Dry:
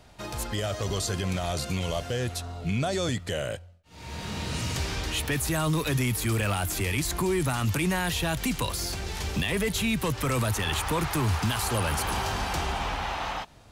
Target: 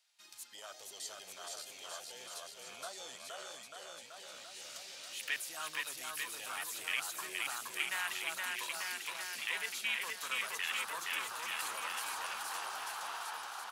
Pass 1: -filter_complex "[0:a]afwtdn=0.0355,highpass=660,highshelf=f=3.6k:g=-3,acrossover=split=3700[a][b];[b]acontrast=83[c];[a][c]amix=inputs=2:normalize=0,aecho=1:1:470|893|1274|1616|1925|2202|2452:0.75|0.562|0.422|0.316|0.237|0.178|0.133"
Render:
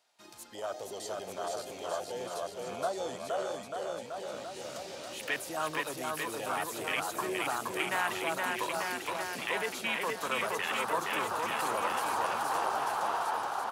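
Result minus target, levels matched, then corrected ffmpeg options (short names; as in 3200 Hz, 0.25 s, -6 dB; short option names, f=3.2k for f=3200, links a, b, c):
500 Hz band +12.0 dB
-filter_complex "[0:a]afwtdn=0.0355,highpass=2k,highshelf=f=3.6k:g=-3,acrossover=split=3700[a][b];[b]acontrast=83[c];[a][c]amix=inputs=2:normalize=0,aecho=1:1:470|893|1274|1616|1925|2202|2452:0.75|0.562|0.422|0.316|0.237|0.178|0.133"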